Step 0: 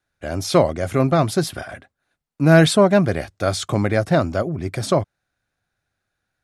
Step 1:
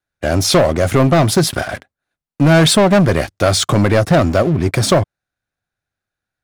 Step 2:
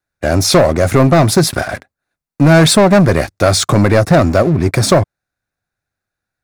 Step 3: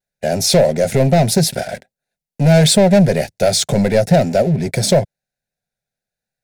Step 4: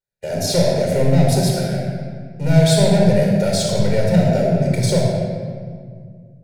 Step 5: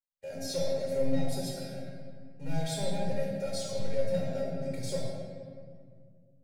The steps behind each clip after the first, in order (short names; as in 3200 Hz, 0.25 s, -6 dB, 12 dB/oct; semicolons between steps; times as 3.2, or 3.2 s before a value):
sample leveller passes 3; compressor 3:1, threshold -9 dBFS, peak gain reduction 3.5 dB
bell 3100 Hz -8 dB 0.28 oct; gain +2.5 dB
vibrato 0.99 Hz 37 cents; fixed phaser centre 310 Hz, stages 6; gain -1 dB
shoebox room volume 3300 m³, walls mixed, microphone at 4.6 m; gain -10.5 dB
resonator 270 Hz, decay 0.21 s, harmonics all, mix 90%; gain -5.5 dB